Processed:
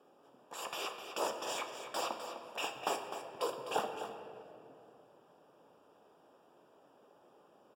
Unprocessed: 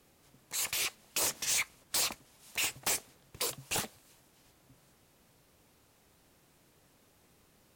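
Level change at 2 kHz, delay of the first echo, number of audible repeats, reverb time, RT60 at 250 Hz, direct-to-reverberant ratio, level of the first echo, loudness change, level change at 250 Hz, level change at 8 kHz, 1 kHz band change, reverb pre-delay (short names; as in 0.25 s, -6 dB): -6.5 dB, 0.254 s, 1, 2.9 s, 3.7 s, 4.0 dB, -10.0 dB, -7.0 dB, +1.0 dB, -15.0 dB, +6.5 dB, 5 ms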